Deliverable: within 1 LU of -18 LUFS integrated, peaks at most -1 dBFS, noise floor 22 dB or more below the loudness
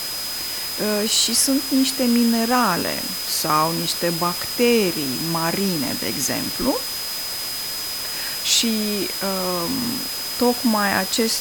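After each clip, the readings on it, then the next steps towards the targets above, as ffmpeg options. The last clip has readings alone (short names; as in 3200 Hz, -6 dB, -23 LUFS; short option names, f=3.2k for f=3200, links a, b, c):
steady tone 5000 Hz; tone level -28 dBFS; noise floor -28 dBFS; noise floor target -42 dBFS; loudness -20.0 LUFS; peak -2.0 dBFS; loudness target -18.0 LUFS
-> -af "bandreject=f=5k:w=30"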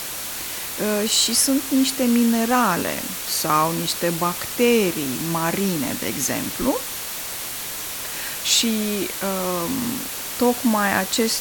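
steady tone none; noise floor -30 dBFS; noise floor target -43 dBFS
-> -af "afftdn=nr=13:nf=-30"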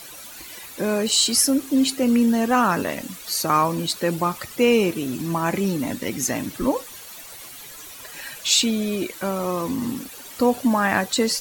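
noise floor -40 dBFS; noise floor target -44 dBFS
-> -af "afftdn=nr=6:nf=-40"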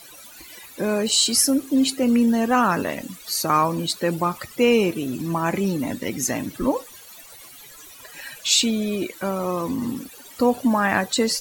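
noise floor -44 dBFS; loudness -21.5 LUFS; peak -2.5 dBFS; loudness target -18.0 LUFS
-> -af "volume=3.5dB,alimiter=limit=-1dB:level=0:latency=1"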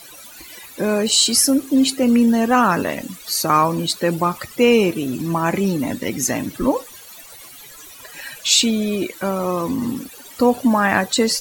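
loudness -18.0 LUFS; peak -1.0 dBFS; noise floor -41 dBFS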